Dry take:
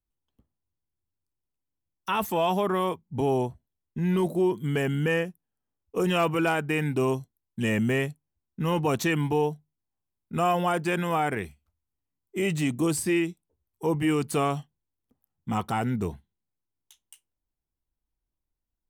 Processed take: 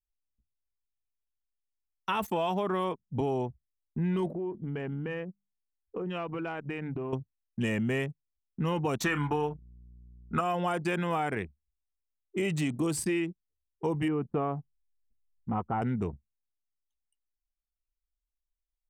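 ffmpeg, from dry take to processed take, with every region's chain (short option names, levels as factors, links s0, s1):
-filter_complex "[0:a]asettb=1/sr,asplit=3[s0][s1][s2];[s0]atrim=end=4.334[s3];[s1]atrim=start=4.33:end=7.13,asetpts=PTS-STARTPTS,afade=t=in:d=0.004:c=qsin,afade=t=out:st=2.796:d=0.004:c=qsin,highshelf=f=7200:g=-7,bandreject=f=50:t=h:w=6,bandreject=f=100:t=h:w=6,bandreject=f=150:t=h:w=6,bandreject=f=200:t=h:w=6,bandreject=f=250:t=h:w=6,acompressor=threshold=0.0282:ratio=8:attack=3.2:release=140:knee=1:detection=peak[s4];[s2]atrim=start=7.126[s5];[s3][s4]acrossfade=d=0.004:c1=hsin:c2=qsin[s6];[s6][s5]acrossfade=d=0.004:c1=qsin:c2=hsin,asettb=1/sr,asplit=3[s7][s8][s9];[s7]atrim=end=9.044[s10];[s8]atrim=start=9.04:end=10.41,asetpts=PTS-STARTPTS,afade=t=in:d=0.004:c=qsin,afade=t=out:st=1.366:d=0.004:c=qsin,equalizer=f=1300:w=1.5:g=15,aeval=exprs='val(0)+0.00398*(sin(2*PI*60*n/s)+sin(2*PI*2*60*n/s)/2+sin(2*PI*3*60*n/s)/3+sin(2*PI*4*60*n/s)/4+sin(2*PI*5*60*n/s)/5)':c=same,asplit=2[s11][s12];[s12]adelay=34,volume=0.316[s13];[s11][s13]amix=inputs=2:normalize=0,atrim=end_sample=60417[s14];[s9]atrim=start=10.406[s15];[s10][s14]acrossfade=d=0.004:c1=hsin:c2=qsin[s16];[s16][s15]acrossfade=d=0.004:c1=qsin:c2=hsin,asettb=1/sr,asplit=3[s17][s18][s19];[s17]atrim=end=14.084[s20];[s18]atrim=start=14.08:end=15.82,asetpts=PTS-STARTPTS,afade=t=in:d=0.004:c=qsin,afade=t=out:st=1.736:d=0.004:c=qsin,asubboost=boost=9:cutoff=55,lowpass=1200[s21];[s19]atrim=start=15.816[s22];[s20][s21]acrossfade=d=0.004:c1=hsin:c2=qsin[s23];[s23][s22]acrossfade=d=0.004:c1=qsin:c2=hsin,anlmdn=2.51,equalizer=f=14000:t=o:w=0.79:g=-5.5,acompressor=threshold=0.0501:ratio=6"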